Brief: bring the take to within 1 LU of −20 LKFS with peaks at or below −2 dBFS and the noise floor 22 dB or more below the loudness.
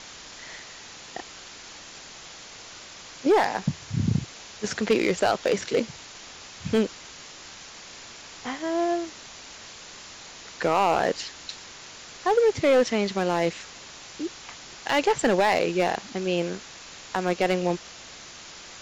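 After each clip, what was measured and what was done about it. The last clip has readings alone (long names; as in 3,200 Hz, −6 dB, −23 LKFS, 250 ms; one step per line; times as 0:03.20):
share of clipped samples 0.7%; peaks flattened at −14.0 dBFS; background noise floor −44 dBFS; target noise floor −48 dBFS; integrated loudness −25.5 LKFS; sample peak −14.0 dBFS; target loudness −20.0 LKFS
→ clipped peaks rebuilt −14 dBFS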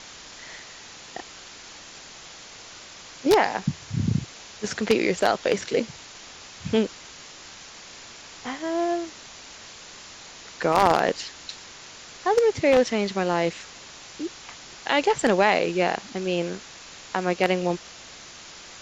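share of clipped samples 0.0%; background noise floor −44 dBFS; target noise floor −47 dBFS
→ broadband denoise 6 dB, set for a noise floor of −44 dBFS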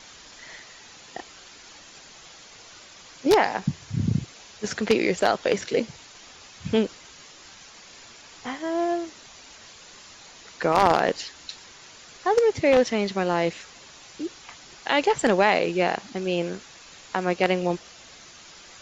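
background noise floor −48 dBFS; integrated loudness −24.5 LKFS; sample peak −5.0 dBFS; target loudness −20.0 LKFS
→ level +4.5 dB
brickwall limiter −2 dBFS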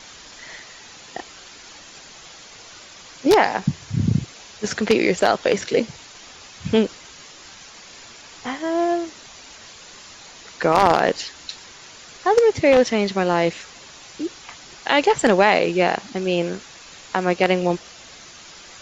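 integrated loudness −20.0 LKFS; sample peak −2.0 dBFS; background noise floor −43 dBFS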